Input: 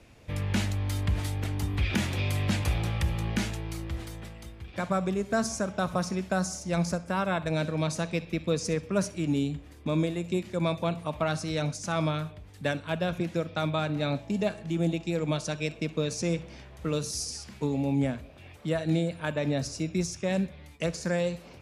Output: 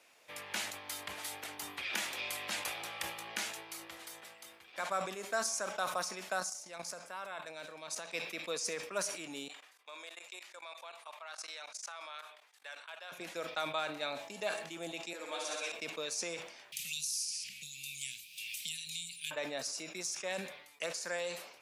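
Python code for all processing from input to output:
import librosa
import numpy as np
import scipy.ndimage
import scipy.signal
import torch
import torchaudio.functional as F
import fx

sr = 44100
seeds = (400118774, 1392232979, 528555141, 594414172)

y = fx.chain(x, sr, fx.highpass(hz=47.0, slope=12),
    fx.level_steps(step_db=12), at=(6.4, 8.14))
y = fx.chain(y, sr, fx.highpass(hz=820.0, slope=12),
    fx.high_shelf(hz=11000.0, db=-10.5),
    fx.level_steps(step_db=21), at=(9.48, 13.12))
y = fx.chain(y, sr, fx.steep_highpass(hz=220.0, slope=36),
    fx.room_flutter(wall_m=10.7, rt60_s=1.5),
    fx.ensemble(), at=(15.13, 15.72))
y = fx.chain(y, sr, fx.cheby1_bandstop(low_hz=170.0, high_hz=2500.0, order=4),
    fx.high_shelf(hz=4900.0, db=8.0),
    fx.band_squash(depth_pct=100), at=(16.72, 19.31))
y = scipy.signal.sosfilt(scipy.signal.butter(2, 720.0, 'highpass', fs=sr, output='sos'), y)
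y = fx.high_shelf(y, sr, hz=9000.0, db=8.0)
y = fx.sustainer(y, sr, db_per_s=74.0)
y = y * 10.0 ** (-3.5 / 20.0)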